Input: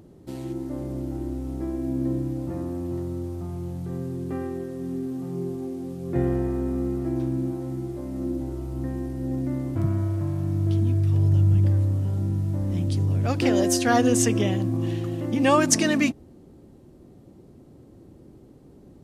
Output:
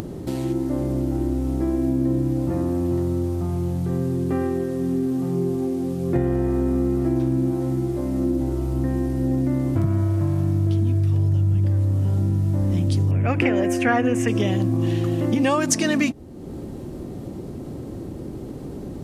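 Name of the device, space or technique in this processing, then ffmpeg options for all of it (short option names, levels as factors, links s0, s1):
upward and downward compression: -filter_complex "[0:a]acompressor=mode=upward:threshold=0.0282:ratio=2.5,acompressor=threshold=0.0562:ratio=6,asettb=1/sr,asplit=3[s0][s1][s2];[s0]atrim=end=13.114[s3];[s1]atrim=start=13.11:end=14.28,asetpts=PTS-STARTPTS,afade=t=in:d=0.004:c=qsin,afade=t=out:st=1.166:d=0.004:c=qsin,highshelf=f=3100:t=q:w=3:g=-9.5[s4];[s2]atrim=start=14.276[s5];[s3][s4]acrossfade=d=0.004:c1=hsin:c2=qsin[s6];[s6][s5]acrossfade=d=0.004:c1=qsin:c2=hsin,volume=2.51"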